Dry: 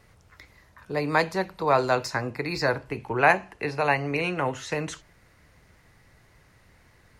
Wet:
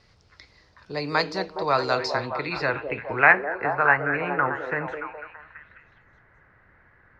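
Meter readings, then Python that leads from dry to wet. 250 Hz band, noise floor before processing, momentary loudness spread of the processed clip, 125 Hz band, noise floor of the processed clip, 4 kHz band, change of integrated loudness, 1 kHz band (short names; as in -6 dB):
-2.0 dB, -59 dBFS, 16 LU, -3.0 dB, -59 dBFS, +2.0 dB, +2.0 dB, +1.5 dB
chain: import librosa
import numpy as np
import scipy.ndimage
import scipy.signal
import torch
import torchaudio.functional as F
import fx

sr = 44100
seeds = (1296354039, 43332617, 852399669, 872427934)

y = fx.echo_stepped(x, sr, ms=208, hz=430.0, octaves=0.7, feedback_pct=70, wet_db=-3.0)
y = fx.filter_sweep_lowpass(y, sr, from_hz=4800.0, to_hz=1600.0, start_s=1.97, end_s=3.63, q=3.5)
y = fx.dynamic_eq(y, sr, hz=1300.0, q=4.1, threshold_db=-36.0, ratio=4.0, max_db=6)
y = F.gain(torch.from_numpy(y), -3.0).numpy()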